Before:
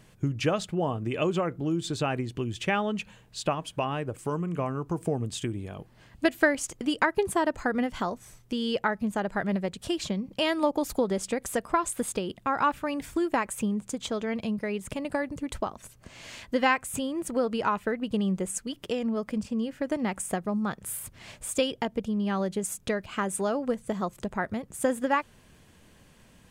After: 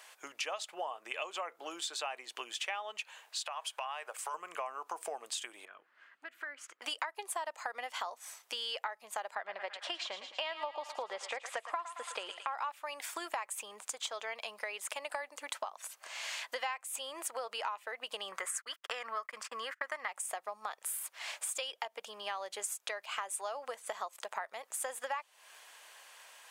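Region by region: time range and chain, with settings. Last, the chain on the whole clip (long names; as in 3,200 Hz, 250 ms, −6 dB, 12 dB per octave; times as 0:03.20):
0:03.45–0:04.34: high-pass filter 570 Hz + downward compressor, threshold −31 dBFS
0:05.65–0:06.82: drawn EQ curve 300 Hz 0 dB, 450 Hz −9 dB, 820 Hz −19 dB, 1,400 Hz −3 dB, 4,800 Hz −21 dB, 9,800 Hz −26 dB + downward compressor 4 to 1, threshold −40 dBFS
0:09.35–0:12.54: low-pass filter 3,500 Hz + feedback echo with a high-pass in the loop 111 ms, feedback 60%, high-pass 850 Hz, level −11 dB
0:18.32–0:20.08: noise gate −42 dBFS, range −38 dB + flat-topped bell 1,500 Hz +12.5 dB 1.2 octaves
whole clip: high-pass filter 720 Hz 24 dB per octave; dynamic equaliser 1,500 Hz, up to −6 dB, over −46 dBFS, Q 3.1; downward compressor 5 to 1, threshold −43 dBFS; level +6.5 dB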